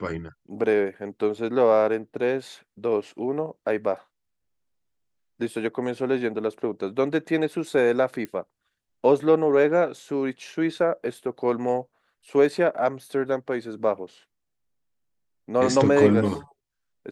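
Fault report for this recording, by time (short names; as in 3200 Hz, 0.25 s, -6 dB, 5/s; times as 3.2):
8.25 pop -20 dBFS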